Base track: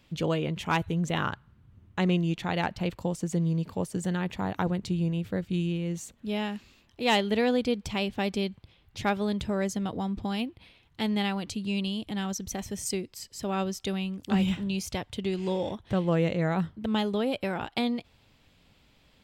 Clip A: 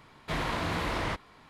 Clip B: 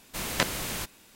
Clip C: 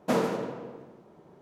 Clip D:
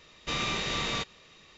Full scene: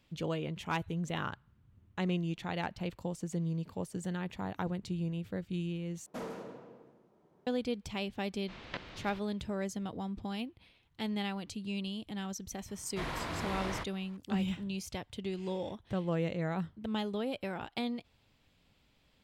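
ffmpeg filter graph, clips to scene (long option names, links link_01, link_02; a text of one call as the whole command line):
ffmpeg -i bed.wav -i cue0.wav -i cue1.wav -i cue2.wav -filter_complex "[0:a]volume=-7.5dB[link_01];[3:a]asoftclip=type=tanh:threshold=-22dB[link_02];[2:a]lowpass=frequency=4000:width=0.5412,lowpass=frequency=4000:width=1.3066[link_03];[link_01]asplit=2[link_04][link_05];[link_04]atrim=end=6.064[link_06];[link_02]atrim=end=1.41,asetpts=PTS-STARTPTS,volume=-12.5dB[link_07];[link_05]atrim=start=7.466[link_08];[link_03]atrim=end=1.15,asetpts=PTS-STARTPTS,volume=-14dB,afade=type=in:duration=0.004:curve=hsin,afade=type=out:start_time=1.146:duration=0.004:curve=hsin,adelay=367794S[link_09];[1:a]atrim=end=1.49,asetpts=PTS-STARTPTS,volume=-6.5dB,afade=type=in:duration=0.004:curve=hsin,afade=type=out:start_time=1.486:duration=0.004:curve=hsin,adelay=559188S[link_10];[link_06][link_07]acrossfade=duration=0.004:curve1=hsin:curve2=hsin[link_11];[link_11][link_08]acrossfade=duration=0.004:curve1=hsin:curve2=hsin[link_12];[link_12][link_09][link_10]amix=inputs=3:normalize=0" out.wav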